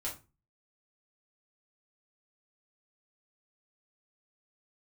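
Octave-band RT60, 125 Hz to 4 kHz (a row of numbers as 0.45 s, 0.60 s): 0.50 s, 0.40 s, 0.30 s, 0.30 s, 0.25 s, 0.20 s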